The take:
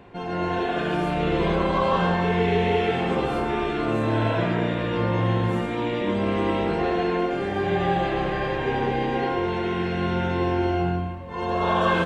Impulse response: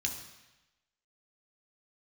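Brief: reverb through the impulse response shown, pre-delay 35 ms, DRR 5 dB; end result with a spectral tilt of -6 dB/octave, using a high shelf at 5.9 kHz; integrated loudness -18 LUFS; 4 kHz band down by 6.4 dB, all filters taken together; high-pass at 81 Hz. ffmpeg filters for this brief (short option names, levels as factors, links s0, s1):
-filter_complex "[0:a]highpass=81,equalizer=f=4000:t=o:g=-8.5,highshelf=f=5900:g=-3,asplit=2[s0][s1];[1:a]atrim=start_sample=2205,adelay=35[s2];[s1][s2]afir=irnorm=-1:irlink=0,volume=0.422[s3];[s0][s3]amix=inputs=2:normalize=0,volume=2"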